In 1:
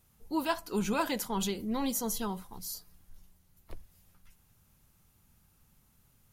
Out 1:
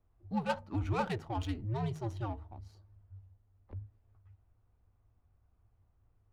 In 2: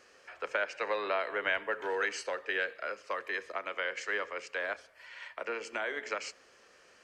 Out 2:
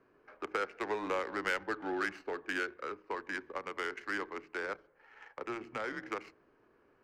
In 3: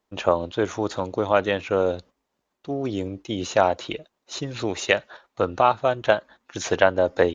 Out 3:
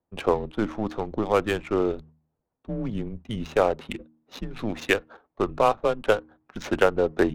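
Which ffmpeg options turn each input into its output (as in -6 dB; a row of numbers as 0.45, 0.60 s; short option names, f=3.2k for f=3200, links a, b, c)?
-af "afreqshift=-110,bandreject=f=78.13:t=h:w=4,bandreject=f=156.26:t=h:w=4,bandreject=f=234.39:t=h:w=4,bandreject=f=312.52:t=h:w=4,adynamicsmooth=sensitivity=4:basefreq=1.1k,volume=-2dB"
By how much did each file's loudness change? -3.5, -3.0, -2.0 LU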